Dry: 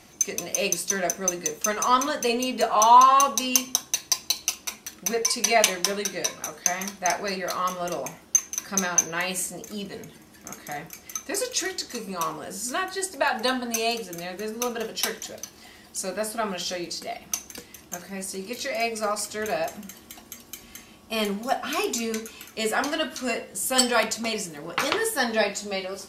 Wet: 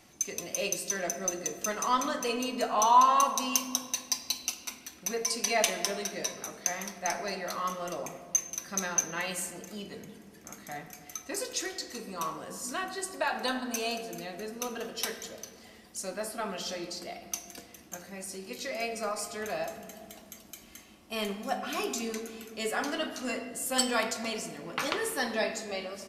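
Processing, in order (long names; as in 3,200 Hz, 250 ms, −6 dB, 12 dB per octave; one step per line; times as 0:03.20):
on a send at −8 dB: convolution reverb RT60 2.2 s, pre-delay 3 ms
on the sum: downsampling to 32,000 Hz
level −7 dB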